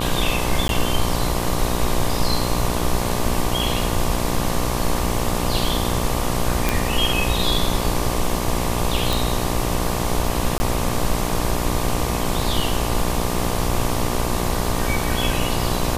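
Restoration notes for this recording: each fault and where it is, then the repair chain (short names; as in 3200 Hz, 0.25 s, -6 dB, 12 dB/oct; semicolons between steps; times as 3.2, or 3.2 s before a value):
buzz 60 Hz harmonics 20 -25 dBFS
0.68–0.69 gap 12 ms
6.69 pop
9.13 pop
10.58–10.6 gap 20 ms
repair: de-click; de-hum 60 Hz, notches 20; interpolate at 0.68, 12 ms; interpolate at 10.58, 20 ms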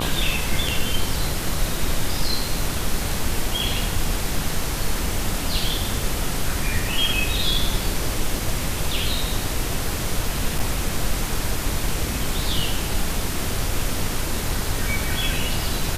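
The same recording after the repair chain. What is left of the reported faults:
none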